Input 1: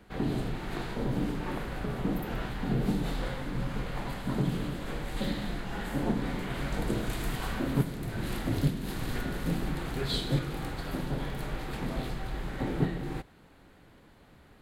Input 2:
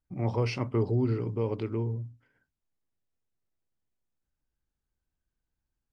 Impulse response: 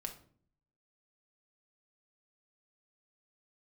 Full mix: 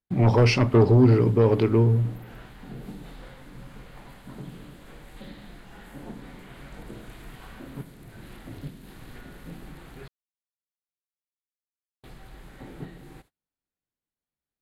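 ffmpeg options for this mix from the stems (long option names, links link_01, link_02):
-filter_complex "[0:a]acrossover=split=3200[link_01][link_02];[link_02]acompressor=threshold=-60dB:ratio=4:attack=1:release=60[link_03];[link_01][link_03]amix=inputs=2:normalize=0,equalizer=frequency=12000:width_type=o:width=2.1:gain=14.5,volume=-11dB,asplit=3[link_04][link_05][link_06];[link_04]atrim=end=10.08,asetpts=PTS-STARTPTS,afade=type=out:start_time=10.076:duration=0.004:curve=hsin[link_07];[link_05]atrim=start=10.08:end=12.03,asetpts=PTS-STARTPTS,volume=0[link_08];[link_06]atrim=start=12.03,asetpts=PTS-STARTPTS,afade=type=in:duration=0.004:curve=hsin[link_09];[link_07][link_08][link_09]concat=n=3:v=0:a=1[link_10];[1:a]aeval=exprs='0.178*sin(PI/2*1.78*val(0)/0.178)':channel_layout=same,volume=2dB,asplit=2[link_11][link_12];[link_12]volume=-10dB[link_13];[2:a]atrim=start_sample=2205[link_14];[link_13][link_14]afir=irnorm=-1:irlink=0[link_15];[link_10][link_11][link_15]amix=inputs=3:normalize=0,agate=range=-30dB:threshold=-54dB:ratio=16:detection=peak"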